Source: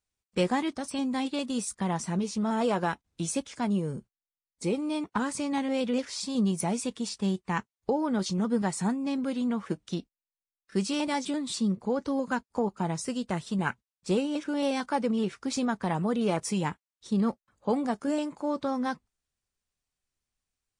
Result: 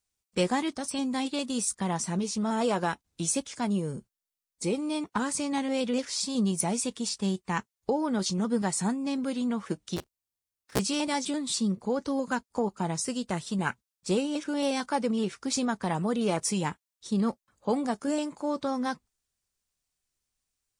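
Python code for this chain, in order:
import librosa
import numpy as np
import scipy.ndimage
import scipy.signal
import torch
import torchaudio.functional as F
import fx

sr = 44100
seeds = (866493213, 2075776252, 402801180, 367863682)

y = fx.cycle_switch(x, sr, every=3, mode='inverted', at=(9.96, 10.78), fade=0.02)
y = fx.bass_treble(y, sr, bass_db=-1, treble_db=6)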